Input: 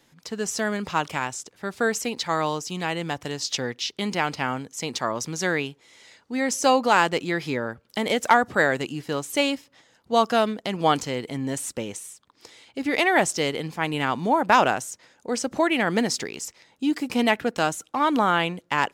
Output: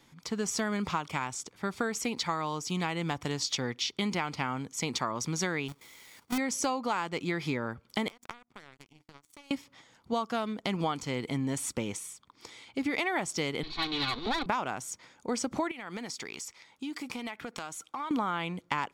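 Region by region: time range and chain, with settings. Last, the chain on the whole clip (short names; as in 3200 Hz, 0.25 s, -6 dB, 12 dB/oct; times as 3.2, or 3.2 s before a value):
5.68–6.38 half-waves squared off + high shelf 4700 Hz +9.5 dB + level quantiser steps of 13 dB
8.08–9.51 notches 60/120/180/240/300 Hz + compressor, threshold -30 dBFS + power-law curve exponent 3
13.63–14.46 minimum comb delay 2.7 ms + synth low-pass 4000 Hz, resonance Q 13 + overloaded stage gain 16.5 dB
15.71–18.11 low shelf 430 Hz -9.5 dB + compressor 8:1, threshold -34 dBFS
whole clip: high shelf 7300 Hz -5 dB; comb 0.9 ms, depth 34%; compressor 12:1, threshold -27 dBFS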